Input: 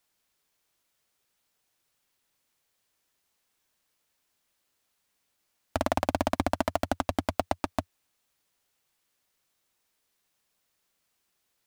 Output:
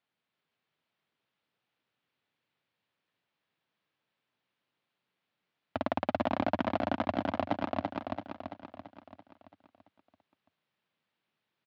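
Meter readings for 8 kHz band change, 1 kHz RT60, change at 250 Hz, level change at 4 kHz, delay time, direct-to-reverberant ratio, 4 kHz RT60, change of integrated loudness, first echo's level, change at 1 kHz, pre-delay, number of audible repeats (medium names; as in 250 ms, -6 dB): under -20 dB, no reverb, -0.5 dB, -5.5 dB, 336 ms, no reverb, no reverb, -3.5 dB, -3.0 dB, -2.5 dB, no reverb, 7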